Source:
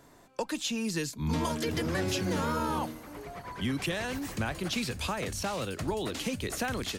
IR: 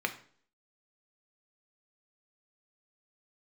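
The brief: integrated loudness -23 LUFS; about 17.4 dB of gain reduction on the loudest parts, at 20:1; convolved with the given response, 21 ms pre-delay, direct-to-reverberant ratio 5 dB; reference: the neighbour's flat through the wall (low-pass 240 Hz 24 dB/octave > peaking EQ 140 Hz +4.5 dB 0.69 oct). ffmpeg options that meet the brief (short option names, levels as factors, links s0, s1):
-filter_complex "[0:a]acompressor=threshold=0.00631:ratio=20,asplit=2[s0][s1];[1:a]atrim=start_sample=2205,adelay=21[s2];[s1][s2]afir=irnorm=-1:irlink=0,volume=0.266[s3];[s0][s3]amix=inputs=2:normalize=0,lowpass=f=240:w=0.5412,lowpass=f=240:w=1.3066,equalizer=f=140:t=o:w=0.69:g=4.5,volume=25.1"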